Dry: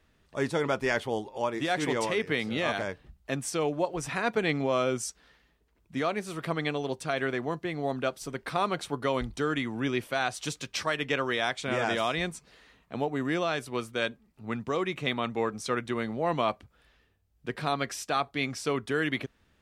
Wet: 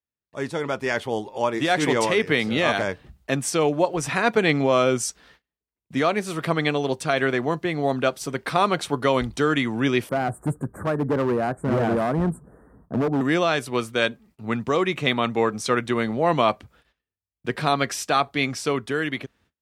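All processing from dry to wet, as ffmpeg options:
-filter_complex "[0:a]asettb=1/sr,asplit=3[a][b][c];[a]atrim=end=10.094[d];[b]atrim=start=10.09:end=13.21,asetpts=PTS-STARTPTS,afade=t=in:d=0.004:c=qsin,afade=t=out:st=3.116:d=0.004:c=qsin,asuperstop=centerf=3800:order=12:qfactor=0.57,tiltshelf=f=650:g=9,asoftclip=type=hard:threshold=-26dB[e];[c]atrim=start=13.206[f];[d][e]acrossfade=d=0.004:c1=hsin:c2=qsin[g];[g][f]acrossfade=d=0.004:c1=qsin:c2=hsin,agate=range=-30dB:threshold=-60dB:ratio=16:detection=peak,highpass=62,dynaudnorm=f=210:g=11:m=8dB"

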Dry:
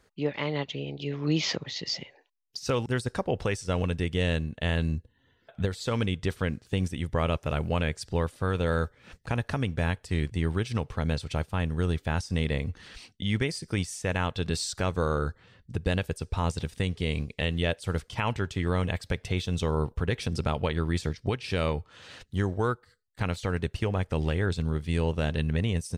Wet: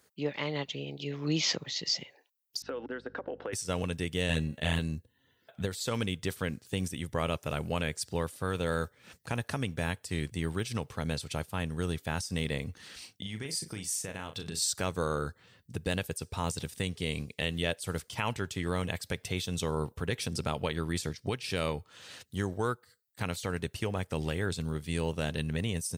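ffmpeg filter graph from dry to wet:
-filter_complex "[0:a]asettb=1/sr,asplit=3[a][b][c];[a]atrim=end=2.624[d];[b]atrim=start=2.62:end=3.53,asetpts=PTS-STARTPTS,afade=t=in:d=0.004:c=qsin,afade=t=out:st=0.906:d=0.004:c=qsin,highpass=f=270:w=0.5412,highpass=f=270:w=1.3066,equalizer=f=280:t=q:w=4:g=9,equalizer=f=500:t=q:w=4:g=7,equalizer=f=1.5k:t=q:w=4:g=7,equalizer=f=2.4k:t=q:w=4:g=-7,lowpass=f=2.8k:w=0.5412,lowpass=f=2.8k:w=1.3066,acompressor=threshold=-29dB:ratio=10:attack=3.2:release=140:knee=1:detection=peak,aeval=exprs='val(0)+0.00398*(sin(2*PI*50*n/s)+sin(2*PI*2*50*n/s)/2+sin(2*PI*3*50*n/s)/3+sin(2*PI*4*50*n/s)/4+sin(2*PI*5*50*n/s)/5)':c=same[e];[c]atrim=start=3.526[f];[d][e]acrossfade=d=0.004:c1=hsin:c2=qsin[g];[g][f]acrossfade=d=0.004:c1=qsin:c2=hsin,asettb=1/sr,asplit=3[h][i][j];[h]atrim=end=4.284[k];[i]atrim=start=4.28:end=4.79,asetpts=PTS-STARTPTS,afade=t=in:d=0.004:c=qsin,afade=t=out:st=0.506:d=0.004:c=qsin,asplit=2[l][m];[m]adelay=13,volume=-2dB[n];[l][n]amix=inputs=2:normalize=0,atrim=end_sample=22491,bandreject=f=276.1:t=h:w=4,bandreject=f=552.2:t=h:w=4,bandreject=f=828.3:t=h:w=4,bandreject=f=1.1044k:t=h:w=4,bandreject=f=1.3805k:t=h:w=4,bandreject=f=1.6566k:t=h:w=4,bandreject=f=1.9327k:t=h:w=4,bandreject=f=2.2088k:t=h:w=4,bandreject=f=2.4849k:t=h:w=4,bandreject=f=2.761k:t=h:w=4,bandreject=f=3.0371k:t=h:w=4,bandreject=f=3.3132k:t=h:w=4,bandreject=f=3.5893k:t=h:w=4,bandreject=f=3.8654k:t=h:w=4,bandreject=f=4.1415k:t=h:w=4,bandreject=f=4.4176k:t=h:w=4,bandreject=f=4.6937k:t=h:w=4,bandreject=f=4.9698k:t=h:w=4,bandreject=f=5.2459k:t=h:w=4,bandreject=f=5.522k:t=h:w=4,bandreject=f=5.7981k:t=h:w=4,bandreject=f=6.0742k:t=h:w=4,bandreject=f=6.3503k:t=h:w=4,bandreject=f=6.6264k:t=h:w=4,bandreject=f=6.9025k:t=h:w=4,bandreject=f=7.1786k:t=h:w=4,bandreject=f=7.4547k:t=h:w=4,bandreject=f=7.7308k:t=h:w=4,bandreject=f=8.0069k:t=h:w=4[o];[j]atrim=start=4.786[p];[k][o]acrossfade=d=0.004:c1=hsin:c2=qsin[q];[q][p]acrossfade=d=0.004:c1=qsin:c2=hsin,asettb=1/sr,asplit=3[r][s][t];[r]atrim=end=12.774[u];[s]atrim=start=12.77:end=14.62,asetpts=PTS-STARTPTS,afade=t=in:d=0.004:c=qsin,afade=t=out:st=1.846:d=0.004:c=qsin,acompressor=threshold=-30dB:ratio=6:attack=3.2:release=140:knee=1:detection=peak,asplit=2[v][w];[w]adelay=37,volume=-8.5dB[x];[v][x]amix=inputs=2:normalize=0,atrim=end_sample=81585[y];[t]atrim=start=14.616[z];[u][y]acrossfade=d=0.004:c1=hsin:c2=qsin[aa];[aa][z]acrossfade=d=0.004:c1=qsin:c2=hsin,highpass=100,aemphasis=mode=production:type=50fm,volume=-3.5dB"

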